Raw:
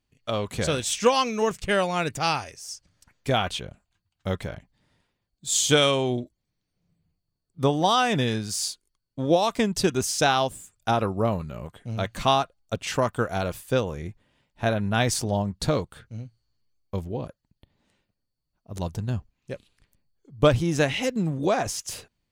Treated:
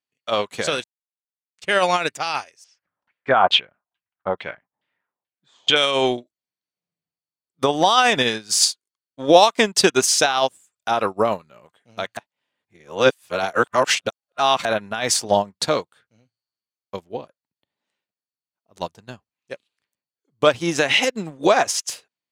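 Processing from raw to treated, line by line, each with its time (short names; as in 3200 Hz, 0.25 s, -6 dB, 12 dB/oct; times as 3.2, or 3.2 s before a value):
0.84–1.58 mute
2.64–5.76 LFO low-pass saw down 2.3 Hz 750–3400 Hz
12.17–14.65 reverse
whole clip: weighting filter A; maximiser +18.5 dB; upward expander 2.5:1, over -26 dBFS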